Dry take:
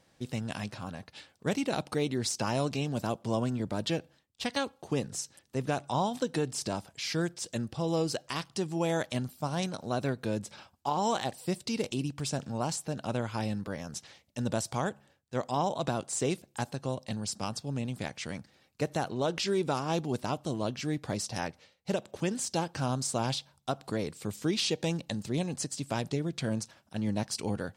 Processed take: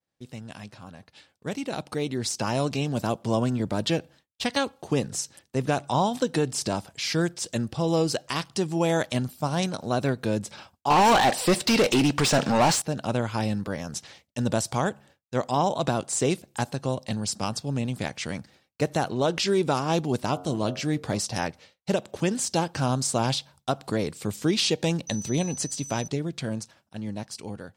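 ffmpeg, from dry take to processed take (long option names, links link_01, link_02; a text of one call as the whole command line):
ffmpeg -i in.wav -filter_complex "[0:a]asettb=1/sr,asplit=3[link_01][link_02][link_03];[link_01]atrim=end=10.904[link_04];[link_02]atrim=start=10.9:end=12.82,asetpts=PTS-STARTPTS,afade=type=in:duration=0.004:curve=qsin,afade=type=out:start_time=1.916:duration=0.004:curve=qsin,asplit=2[link_05][link_06];[link_06]highpass=frequency=720:poles=1,volume=27dB,asoftclip=type=tanh:threshold=-17.5dB[link_07];[link_05][link_07]amix=inputs=2:normalize=0,lowpass=frequency=3300:poles=1,volume=-6dB[link_08];[link_03]atrim=start=12.816[link_09];[link_04][link_08]acrossfade=duration=0.004:curve1=hsin:curve2=qsin[link_10];[link_10][link_09]acrossfade=duration=0.004:curve1=qsin:curve2=hsin,asplit=3[link_11][link_12][link_13];[link_11]afade=type=out:start_time=20.33:duration=0.02[link_14];[link_12]bandreject=frequency=90.58:width_type=h:width=4,bandreject=frequency=181.16:width_type=h:width=4,bandreject=frequency=271.74:width_type=h:width=4,bandreject=frequency=362.32:width_type=h:width=4,bandreject=frequency=452.9:width_type=h:width=4,bandreject=frequency=543.48:width_type=h:width=4,bandreject=frequency=634.06:width_type=h:width=4,bandreject=frequency=724.64:width_type=h:width=4,bandreject=frequency=815.22:width_type=h:width=4,bandreject=frequency=905.8:width_type=h:width=4,bandreject=frequency=996.38:width_type=h:width=4,bandreject=frequency=1086.96:width_type=h:width=4,bandreject=frequency=1177.54:width_type=h:width=4,bandreject=frequency=1268.12:width_type=h:width=4,bandreject=frequency=1358.7:width_type=h:width=4,bandreject=frequency=1449.28:width_type=h:width=4,afade=type=in:start_time=20.33:duration=0.02,afade=type=out:start_time=21.19:duration=0.02[link_15];[link_13]afade=type=in:start_time=21.19:duration=0.02[link_16];[link_14][link_15][link_16]amix=inputs=3:normalize=0,asettb=1/sr,asplit=3[link_17][link_18][link_19];[link_17]atrim=end=25.074[link_20];[link_18]atrim=start=25.07:end=26.08,asetpts=PTS-STARTPTS,afade=type=in:duration=0.004:curve=qsin,afade=type=out:start_time=1.006:duration=0.004:curve=qsin,aeval=exprs='val(0)+0.00794*sin(2*PI*6000*n/s)':channel_layout=same[link_21];[link_19]atrim=start=26.076[link_22];[link_20][link_21]acrossfade=duration=0.004:curve1=hsin:curve2=qsin[link_23];[link_23][link_22]acrossfade=duration=0.004:curve1=qsin:curve2=hsin,agate=range=-33dB:threshold=-56dB:ratio=3:detection=peak,dynaudnorm=framelen=390:gausssize=11:maxgain=11dB,volume=-5dB" out.wav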